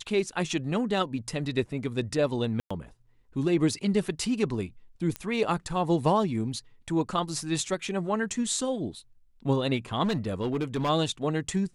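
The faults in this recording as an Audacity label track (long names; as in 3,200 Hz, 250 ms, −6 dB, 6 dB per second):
2.600000	2.710000	drop-out 105 ms
5.160000	5.160000	click −17 dBFS
10.040000	10.900000	clipping −23.5 dBFS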